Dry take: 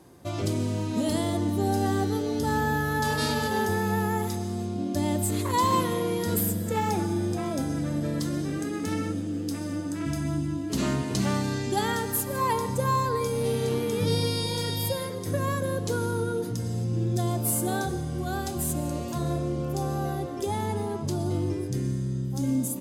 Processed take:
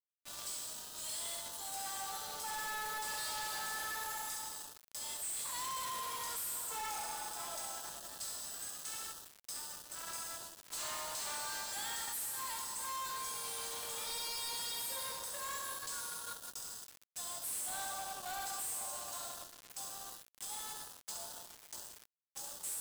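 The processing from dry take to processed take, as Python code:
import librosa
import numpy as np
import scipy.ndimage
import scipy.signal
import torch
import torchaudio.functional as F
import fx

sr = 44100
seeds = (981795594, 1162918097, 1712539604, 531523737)

p1 = x + fx.room_early_taps(x, sr, ms=(19, 69), db=(-10.0, -7.5), dry=0)
p2 = fx.filter_lfo_highpass(p1, sr, shape='sine', hz=0.26, low_hz=860.0, high_hz=2200.0, q=0.72)
p3 = scipy.signal.sosfilt(scipy.signal.butter(4, 600.0, 'highpass', fs=sr, output='sos'), p2)
p4 = fx.peak_eq(p3, sr, hz=8200.0, db=10.5, octaves=0.26)
p5 = fx.room_shoebox(p4, sr, seeds[0], volume_m3=190.0, walls='hard', distance_m=0.41)
p6 = fx.quant_companded(p5, sr, bits=2)
p7 = fx.dynamic_eq(p6, sr, hz=2200.0, q=1.5, threshold_db=-44.0, ratio=4.0, max_db=-4)
p8 = np.clip(10.0 ** (35.5 / 20.0) * p7, -1.0, 1.0) / 10.0 ** (35.5 / 20.0)
y = F.gain(torch.from_numpy(p8), -3.5).numpy()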